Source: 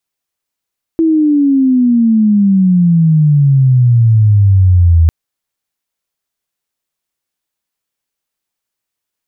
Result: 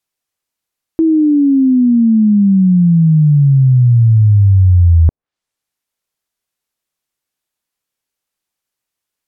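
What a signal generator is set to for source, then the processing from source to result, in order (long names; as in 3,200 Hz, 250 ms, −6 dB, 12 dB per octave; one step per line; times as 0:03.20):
glide logarithmic 330 Hz → 80 Hz −7 dBFS → −4 dBFS 4.10 s
treble cut that deepens with the level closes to 640 Hz, closed at −10 dBFS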